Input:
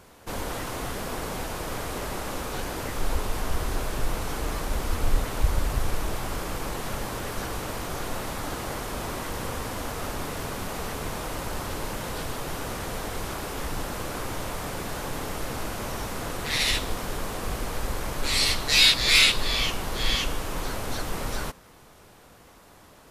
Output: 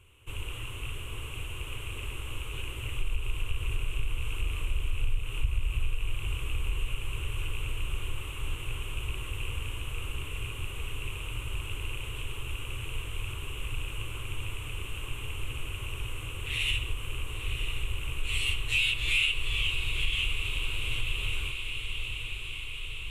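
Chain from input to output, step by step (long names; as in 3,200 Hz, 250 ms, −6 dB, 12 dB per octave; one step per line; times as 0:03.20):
loose part that buzzes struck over −31 dBFS, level −27 dBFS
drawn EQ curve 120 Hz 0 dB, 180 Hz −24 dB, 390 Hz −11 dB, 720 Hz −26 dB, 1,100 Hz −12 dB, 1,800 Hz −18 dB, 2,800 Hz +6 dB, 4,800 Hz −30 dB, 8,100 Hz −7 dB, 15,000 Hz −15 dB
feedback delay with all-pass diffusion 983 ms, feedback 70%, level −9 dB
convolution reverb RT60 0.80 s, pre-delay 45 ms, DRR 11 dB
downward compressor 3 to 1, threshold −24 dBFS, peak gain reduction 8 dB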